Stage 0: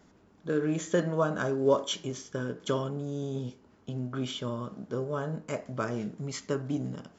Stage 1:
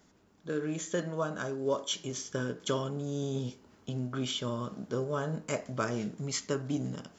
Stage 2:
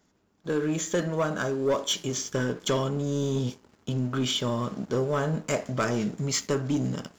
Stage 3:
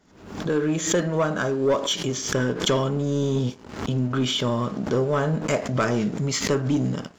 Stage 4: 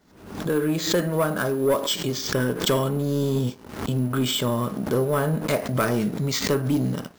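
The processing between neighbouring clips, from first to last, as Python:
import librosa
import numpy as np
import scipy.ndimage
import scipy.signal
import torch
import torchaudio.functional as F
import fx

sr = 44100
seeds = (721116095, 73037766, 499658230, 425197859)

y1 = fx.high_shelf(x, sr, hz=2900.0, db=8.0)
y1 = fx.rider(y1, sr, range_db=4, speed_s=0.5)
y1 = y1 * 10.0 ** (-3.0 / 20.0)
y2 = fx.leveller(y1, sr, passes=2)
y3 = fx.high_shelf(y2, sr, hz=7600.0, db=-10.5)
y3 = fx.pre_swell(y3, sr, db_per_s=84.0)
y3 = y3 * 10.0 ** (4.0 / 20.0)
y4 = np.repeat(y3[::4], 4)[:len(y3)]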